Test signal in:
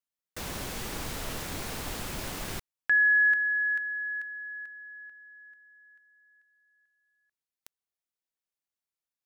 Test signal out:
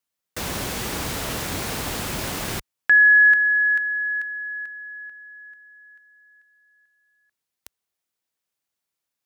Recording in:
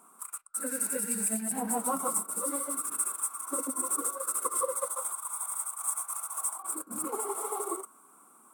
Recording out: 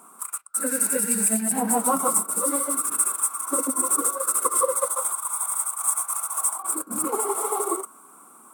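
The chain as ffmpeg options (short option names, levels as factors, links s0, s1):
-af "highpass=50,volume=2.66"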